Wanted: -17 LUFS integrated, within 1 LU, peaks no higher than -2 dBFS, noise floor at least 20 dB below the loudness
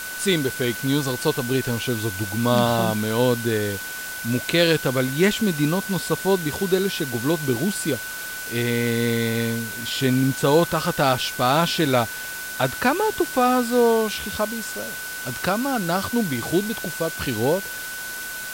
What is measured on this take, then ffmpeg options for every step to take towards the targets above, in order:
steady tone 1500 Hz; tone level -32 dBFS; noise floor -32 dBFS; noise floor target -43 dBFS; loudness -22.5 LUFS; peak -5.5 dBFS; loudness target -17.0 LUFS
-> -af "bandreject=f=1.5k:w=30"
-af "afftdn=nr=11:nf=-32"
-af "volume=5.5dB,alimiter=limit=-2dB:level=0:latency=1"

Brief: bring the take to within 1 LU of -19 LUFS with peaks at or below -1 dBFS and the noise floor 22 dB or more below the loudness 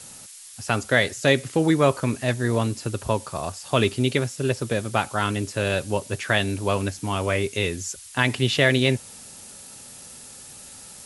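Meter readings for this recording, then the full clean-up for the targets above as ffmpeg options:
noise floor -43 dBFS; noise floor target -46 dBFS; loudness -23.5 LUFS; peak -3.5 dBFS; loudness target -19.0 LUFS
-> -af "afftdn=nr=6:nf=-43"
-af "volume=4.5dB,alimiter=limit=-1dB:level=0:latency=1"

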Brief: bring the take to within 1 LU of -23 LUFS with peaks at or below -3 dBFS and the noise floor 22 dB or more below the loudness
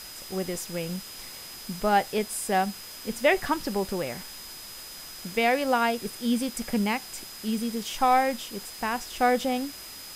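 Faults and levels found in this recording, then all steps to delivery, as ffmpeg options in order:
steady tone 5000 Hz; tone level -44 dBFS; noise floor -42 dBFS; noise floor target -50 dBFS; loudness -27.5 LUFS; peak -10.0 dBFS; loudness target -23.0 LUFS
-> -af "bandreject=f=5k:w=30"
-af "afftdn=nr=8:nf=-42"
-af "volume=4.5dB"

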